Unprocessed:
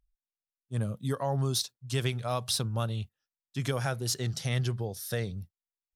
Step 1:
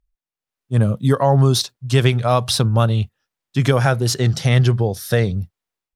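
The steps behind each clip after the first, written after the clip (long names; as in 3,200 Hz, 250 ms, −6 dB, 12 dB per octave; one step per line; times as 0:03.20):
high-shelf EQ 4,000 Hz −9.5 dB
automatic gain control gain up to 12 dB
level +3.5 dB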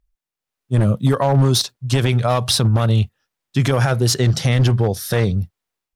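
wavefolder on the positive side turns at −12 dBFS
brickwall limiter −9.5 dBFS, peak gain reduction 8 dB
level +3 dB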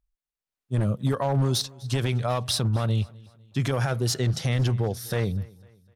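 repeating echo 251 ms, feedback 42%, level −23.5 dB
level −8.5 dB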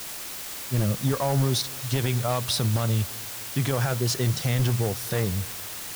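bit-depth reduction 6 bits, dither triangular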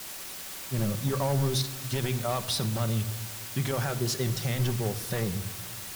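pitch vibrato 8.6 Hz 46 cents
convolution reverb RT60 1.0 s, pre-delay 5 ms, DRR 8.5 dB
level −4 dB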